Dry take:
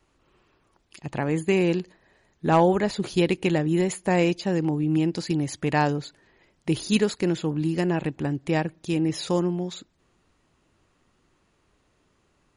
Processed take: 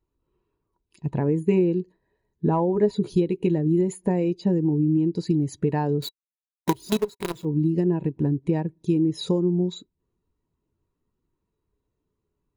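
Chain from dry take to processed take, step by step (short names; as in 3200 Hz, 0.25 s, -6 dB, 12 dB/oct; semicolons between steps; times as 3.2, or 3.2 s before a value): low shelf 350 Hz +6.5 dB; notch 390 Hz, Q 12; 6.02–7.45 companded quantiser 2-bit; compressor 16:1, threshold -23 dBFS, peak gain reduction 21 dB; high shelf 6700 Hz +7.5 dB; small resonant body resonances 410/960/3900 Hz, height 9 dB, ringing for 45 ms; spectral expander 1.5:1; gain -4 dB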